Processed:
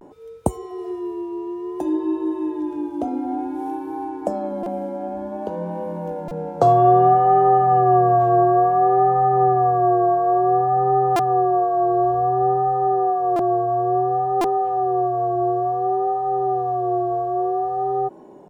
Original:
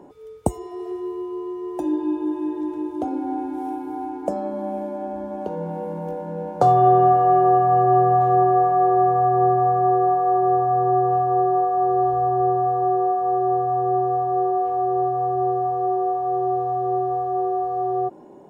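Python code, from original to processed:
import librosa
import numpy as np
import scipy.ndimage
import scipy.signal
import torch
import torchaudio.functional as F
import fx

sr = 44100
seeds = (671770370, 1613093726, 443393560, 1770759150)

y = fx.vibrato(x, sr, rate_hz=0.57, depth_cents=71.0)
y = fx.buffer_glitch(y, sr, at_s=(4.63, 6.28, 11.16, 13.36, 14.41), block=128, repeats=10)
y = y * librosa.db_to_amplitude(1.0)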